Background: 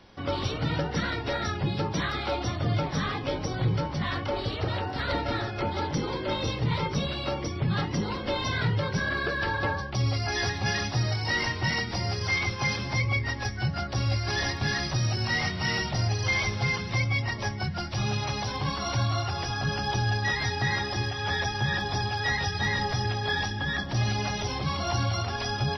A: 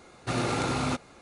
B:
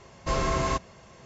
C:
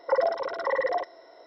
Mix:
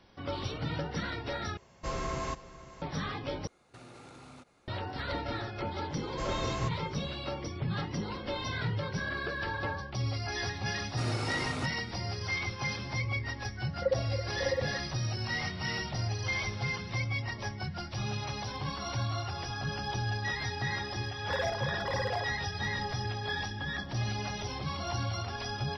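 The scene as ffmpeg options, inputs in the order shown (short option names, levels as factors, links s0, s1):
-filter_complex "[2:a]asplit=2[s0][s1];[1:a]asplit=2[s2][s3];[3:a]asplit=2[s4][s5];[0:a]volume=0.473[s6];[s0]aecho=1:1:497:0.15[s7];[s2]acompressor=threshold=0.02:ratio=6:attack=3.2:release=140:knee=1:detection=peak[s8];[s4]asplit=3[s9][s10][s11];[s9]bandpass=f=530:t=q:w=8,volume=1[s12];[s10]bandpass=f=1840:t=q:w=8,volume=0.501[s13];[s11]bandpass=f=2480:t=q:w=8,volume=0.355[s14];[s12][s13][s14]amix=inputs=3:normalize=0[s15];[s5]asoftclip=type=hard:threshold=0.0631[s16];[s6]asplit=3[s17][s18][s19];[s17]atrim=end=1.574[s20];[s7]atrim=end=1.25,asetpts=PTS-STARTPTS,volume=0.376[s21];[s18]atrim=start=2.816:end=3.474[s22];[s8]atrim=end=1.21,asetpts=PTS-STARTPTS,volume=0.211[s23];[s19]atrim=start=4.676[s24];[s1]atrim=end=1.25,asetpts=PTS-STARTPTS,volume=0.355,afade=t=in:d=0.004:c=hsin,afade=t=out:st=1.246:d=0.004:c=hsin,adelay=5910[s25];[s3]atrim=end=1.21,asetpts=PTS-STARTPTS,volume=0.376,afade=t=in:d=0.004:c=hsin,afade=t=out:st=1.206:d=0.004:c=hsin,adelay=10700[s26];[s15]atrim=end=1.46,asetpts=PTS-STARTPTS,volume=0.631,afade=t=in:d=0.004:c=hsin,afade=t=out:st=1.456:d=0.004:c=hsin,adelay=13730[s27];[s16]atrim=end=1.46,asetpts=PTS-STARTPTS,volume=0.473,afade=t=in:d=0.004:c=hsin,afade=t=out:st=1.456:d=0.004:c=hsin,adelay=21210[s28];[s20][s21]acrossfade=d=0.004:c1=hsin:c2=hsin[s29];[s29][s22]acrossfade=d=0.004:c1=hsin:c2=hsin[s30];[s30][s23]acrossfade=d=0.004:c1=hsin:c2=hsin[s31];[s31][s24]acrossfade=d=0.004:c1=hsin:c2=hsin[s32];[s32][s25][s26][s27][s28]amix=inputs=5:normalize=0"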